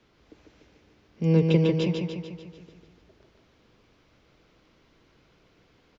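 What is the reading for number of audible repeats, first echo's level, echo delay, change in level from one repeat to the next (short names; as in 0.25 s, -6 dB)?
7, -4.0 dB, 0.147 s, -5.0 dB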